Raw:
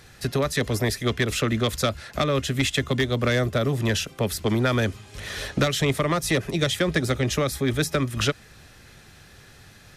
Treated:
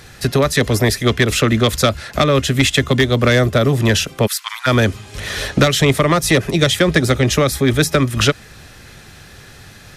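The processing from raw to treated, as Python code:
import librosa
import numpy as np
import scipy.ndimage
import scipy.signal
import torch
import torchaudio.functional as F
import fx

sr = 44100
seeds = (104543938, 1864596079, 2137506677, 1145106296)

y = fx.steep_highpass(x, sr, hz=990.0, slope=48, at=(4.26, 4.66), fade=0.02)
y = F.gain(torch.from_numpy(y), 9.0).numpy()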